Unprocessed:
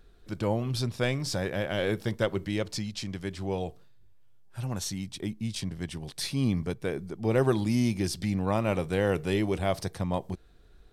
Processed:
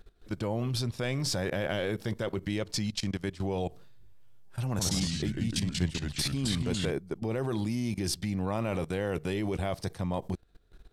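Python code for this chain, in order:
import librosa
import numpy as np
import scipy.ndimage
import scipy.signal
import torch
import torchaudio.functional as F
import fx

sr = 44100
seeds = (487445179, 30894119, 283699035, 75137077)

y = fx.level_steps(x, sr, step_db=18)
y = fx.echo_pitch(y, sr, ms=82, semitones=-2, count=3, db_per_echo=-3.0, at=(4.7, 6.91))
y = y * librosa.db_to_amplitude(5.5)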